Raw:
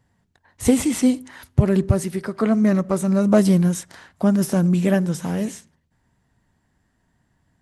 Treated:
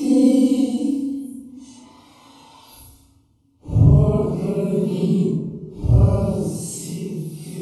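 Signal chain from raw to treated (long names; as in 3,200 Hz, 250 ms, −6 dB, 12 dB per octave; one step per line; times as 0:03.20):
extreme stretch with random phases 6.7×, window 0.05 s, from 0:01.02
Butterworth band-reject 1,700 Hz, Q 1.2
feedback delay network reverb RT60 0.74 s, low-frequency decay 1.35×, high-frequency decay 0.65×, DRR −2 dB
level −5 dB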